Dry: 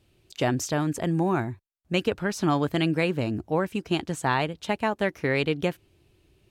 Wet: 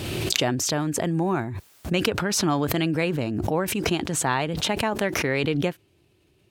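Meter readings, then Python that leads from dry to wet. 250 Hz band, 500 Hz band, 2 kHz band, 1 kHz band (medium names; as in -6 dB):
+1.0 dB, +1.0 dB, +2.0 dB, +1.0 dB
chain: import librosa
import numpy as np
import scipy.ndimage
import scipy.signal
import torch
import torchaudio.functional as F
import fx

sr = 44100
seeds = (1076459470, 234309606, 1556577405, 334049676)

y = scipy.signal.sosfilt(scipy.signal.butter(2, 89.0, 'highpass', fs=sr, output='sos'), x)
y = fx.pre_swell(y, sr, db_per_s=25.0)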